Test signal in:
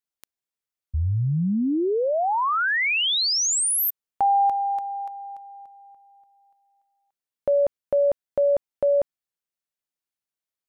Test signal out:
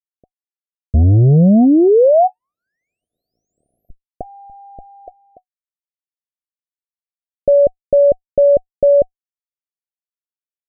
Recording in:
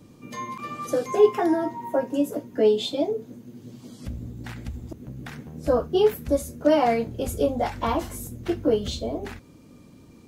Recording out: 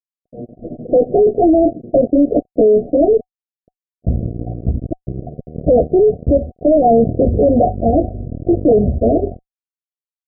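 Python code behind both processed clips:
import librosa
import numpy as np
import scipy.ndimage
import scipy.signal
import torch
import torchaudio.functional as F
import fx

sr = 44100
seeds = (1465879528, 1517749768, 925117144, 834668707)

y = fx.noise_reduce_blind(x, sr, reduce_db=8)
y = fx.fuzz(y, sr, gain_db=29.0, gate_db=-38.0)
y = scipy.signal.sosfilt(scipy.signal.ellip(8, 1.0, 70, 740.0, 'lowpass', fs=sr, output='sos'), y)
y = y * 10.0 ** (6.0 / 20.0)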